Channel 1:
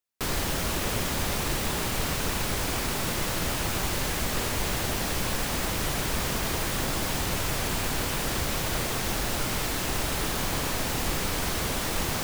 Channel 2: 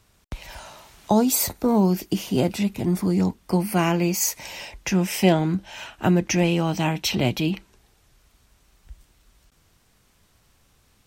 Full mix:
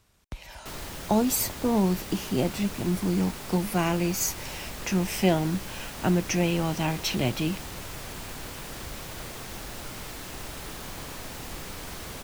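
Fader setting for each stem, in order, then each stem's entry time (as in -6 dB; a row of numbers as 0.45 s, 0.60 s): -10.0 dB, -4.5 dB; 0.45 s, 0.00 s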